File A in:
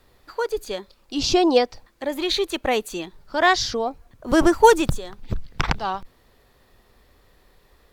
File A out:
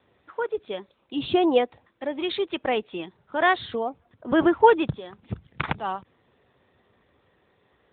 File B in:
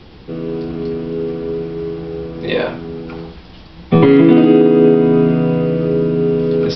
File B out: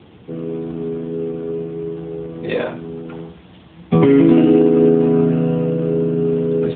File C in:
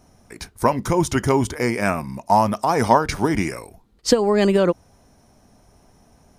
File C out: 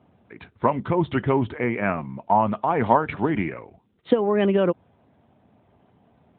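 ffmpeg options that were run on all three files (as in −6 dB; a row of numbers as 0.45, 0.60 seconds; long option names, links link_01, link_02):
-af "volume=-2.5dB" -ar 8000 -c:a libopencore_amrnb -b:a 12200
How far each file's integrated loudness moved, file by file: −3.0, −2.5, −3.0 LU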